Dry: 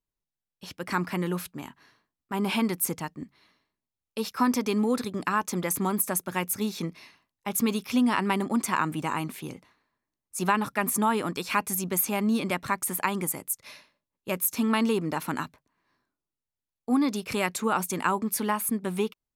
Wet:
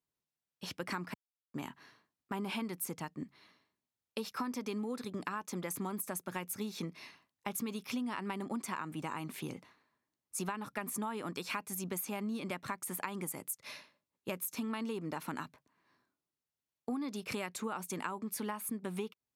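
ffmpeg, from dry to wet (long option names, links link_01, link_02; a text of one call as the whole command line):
ffmpeg -i in.wav -filter_complex "[0:a]asplit=3[link_01][link_02][link_03];[link_01]atrim=end=1.14,asetpts=PTS-STARTPTS,afade=type=out:start_time=1.136:duration=0.004:curve=hsin[link_04];[link_02]atrim=start=1.14:end=1.54,asetpts=PTS-STARTPTS,volume=0[link_05];[link_03]atrim=start=1.54,asetpts=PTS-STARTPTS,afade=type=in:duration=0.004:curve=hsin[link_06];[link_04][link_05][link_06]concat=n=3:v=0:a=1,highpass=94,highshelf=frequency=9000:gain=-3.5,acompressor=threshold=-36dB:ratio=6" out.wav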